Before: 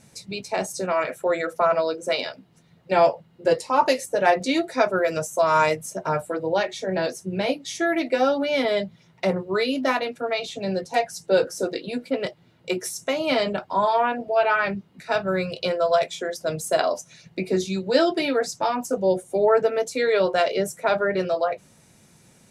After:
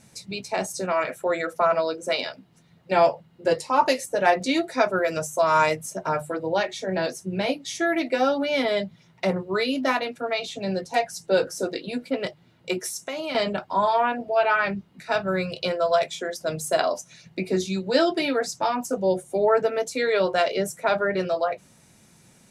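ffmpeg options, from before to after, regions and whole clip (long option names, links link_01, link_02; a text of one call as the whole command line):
ffmpeg -i in.wav -filter_complex "[0:a]asettb=1/sr,asplit=3[link_01][link_02][link_03];[link_01]atrim=end=12.794[link_04];[link_02]atrim=start=12.79:end=13.35,asetpts=PTS-STARTPTS,afade=type=in:duration=0.004:curve=qsin,afade=type=out:start_time=0.556:duration=0.004:curve=qsin,highpass=frequency=250:poles=1,acompressor=threshold=-25dB:ratio=10:attack=3.2:release=140:knee=1:detection=peak[link_05];[link_03]atrim=start=13.346[link_06];[link_04][link_05]acrossfade=duration=0.004:curve1=hsin:curve2=qsin[link_07];[link_07][link_06]acrossfade=duration=0.004:curve1=qsin:curve2=hsin,equalizer=frequency=470:width_type=o:width=0.77:gain=-2.5,bandreject=frequency=50:width_type=h:width=6,bandreject=frequency=100:width_type=h:width=6,bandreject=frequency=150:width_type=h:width=6" out.wav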